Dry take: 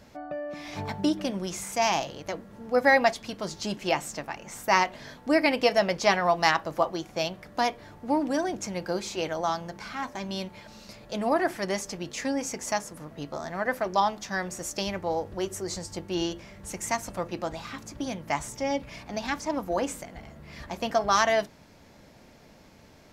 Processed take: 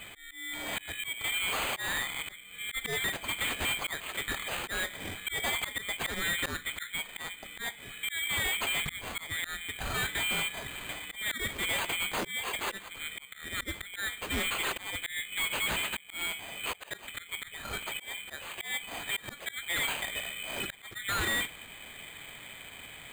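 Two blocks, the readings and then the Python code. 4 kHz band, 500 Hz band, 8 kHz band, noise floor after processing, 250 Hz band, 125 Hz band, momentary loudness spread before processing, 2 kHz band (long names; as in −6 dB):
+2.5 dB, −16.0 dB, 0.0 dB, −50 dBFS, −15.0 dB, −6.0 dB, 15 LU, 0.0 dB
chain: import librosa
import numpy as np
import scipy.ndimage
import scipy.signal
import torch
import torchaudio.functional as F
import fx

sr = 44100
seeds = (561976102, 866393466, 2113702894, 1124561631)

y = fx.band_shuffle(x, sr, order='2413')
y = fx.auto_swell(y, sr, attack_ms=539.0)
y = fx.low_shelf(y, sr, hz=120.0, db=6.5)
y = np.repeat(y[::8], 8)[:len(y)]
y = np.clip(10.0 ** (35.5 / 20.0) * y, -1.0, 1.0) / 10.0 ** (35.5 / 20.0)
y = y * librosa.db_to_amplitude(7.0)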